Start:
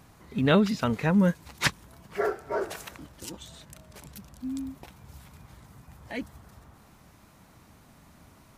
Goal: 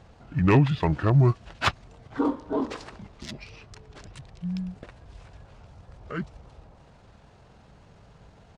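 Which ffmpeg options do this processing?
-af "aeval=exprs='0.251*(abs(mod(val(0)/0.251+3,4)-2)-1)':c=same,adynamicsmooth=sensitivity=3:basefreq=7.3k,asetrate=30296,aresample=44100,atempo=1.45565,volume=3dB"

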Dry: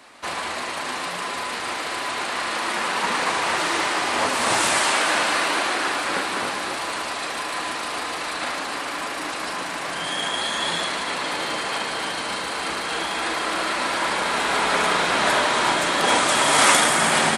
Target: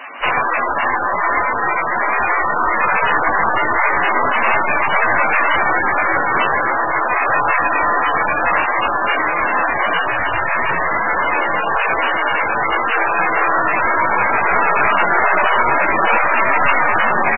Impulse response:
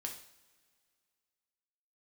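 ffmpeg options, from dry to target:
-filter_complex "[0:a]highpass=f=940:p=1,aecho=1:1:90:0.168,aeval=exprs='(tanh(11.2*val(0)+0.7)-tanh(0.7))/11.2':c=same,asettb=1/sr,asplit=3[a][b][c];[a]atrim=end=7.224[d];[b]atrim=start=7.22:end=8.58,asetpts=PTS-STARTPTS,afade=t=in:d=0.004:c=qsin,afade=t=out:st=1.356:d=0.004:c=qsin,lowpass=f=3.5k:w=0.5412,lowpass=f=3.5k:w=1.3066[e];[c]atrim=start=8.576[f];[d][e]acrossfade=d=0.004:c1=hsin:c2=qsin[g];[g][f]acrossfade=d=0.004:c1=qsin:c2=hsin,asplit=2[h][i];[1:a]atrim=start_sample=2205,atrim=end_sample=4410[j];[i][j]afir=irnorm=-1:irlink=0,volume=-10dB[k];[h][k]amix=inputs=2:normalize=0,alimiter=level_in=23dB:limit=-1dB:release=50:level=0:latency=1,volume=-2.5dB" -ar 16000 -c:a libmp3lame -b:a 8k

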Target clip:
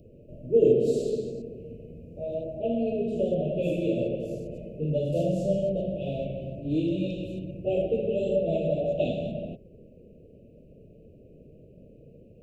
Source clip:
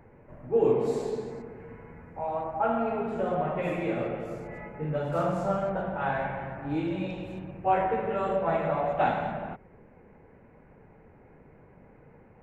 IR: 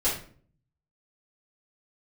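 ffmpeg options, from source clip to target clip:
-af "asuperstop=centerf=1300:order=20:qfactor=0.66,volume=3.5dB"

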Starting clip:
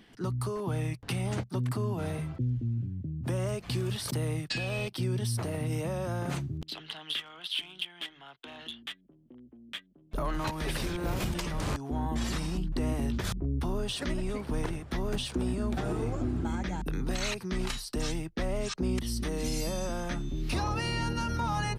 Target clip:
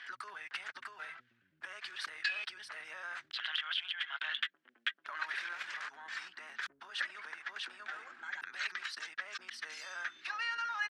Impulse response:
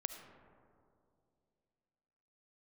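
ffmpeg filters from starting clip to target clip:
-af "lowpass=4.6k,acompressor=threshold=-42dB:ratio=6,highpass=f=1.6k:t=q:w=3.9,atempo=2,volume=7.5dB"

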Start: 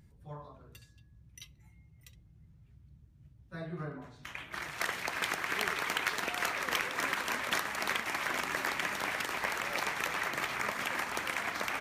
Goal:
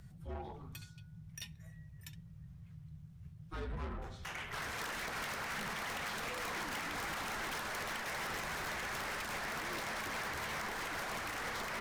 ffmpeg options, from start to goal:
-af "alimiter=level_in=3.5dB:limit=-24dB:level=0:latency=1:release=182,volume=-3.5dB,aeval=exprs='(tanh(158*val(0)+0.15)-tanh(0.15))/158':c=same,afreqshift=-220,volume=6.5dB"

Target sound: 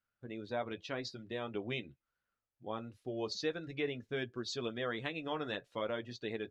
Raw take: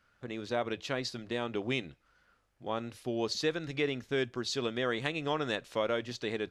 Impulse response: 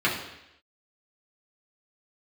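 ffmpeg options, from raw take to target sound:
-af "flanger=delay=8.5:depth=2.2:regen=-47:speed=0.46:shape=triangular,afftdn=nr=15:nf=-49,volume=-1.5dB"

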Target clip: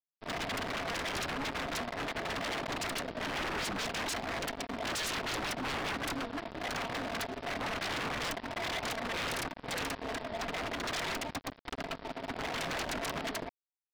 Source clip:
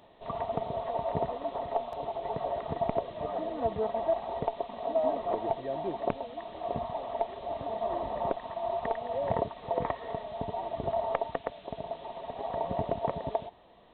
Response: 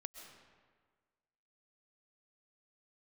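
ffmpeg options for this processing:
-af "equalizer=f=270:t=o:w=0.51:g=14.5,aresample=11025,aeval=exprs='sgn(val(0))*max(abs(val(0))-0.01,0)':c=same,aresample=44100,lowshelf=f=480:g=5.5,aeval=exprs='0.015*(abs(mod(val(0)/0.015+3,4)-2)-1)':c=same,volume=6.5dB"

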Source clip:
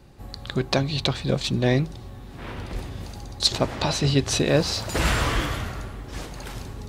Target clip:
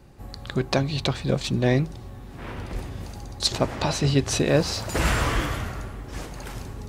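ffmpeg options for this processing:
-af "equalizer=f=3.8k:w=1.7:g=-4"

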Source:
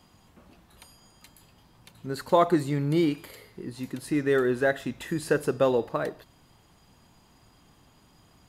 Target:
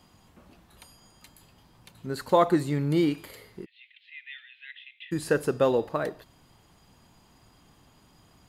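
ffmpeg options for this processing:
-filter_complex "[0:a]asplit=3[a][b][c];[a]afade=t=out:st=3.64:d=0.02[d];[b]asuperpass=centerf=2700:order=8:qfactor=1.8,afade=t=in:st=3.64:d=0.02,afade=t=out:st=5.11:d=0.02[e];[c]afade=t=in:st=5.11:d=0.02[f];[d][e][f]amix=inputs=3:normalize=0"

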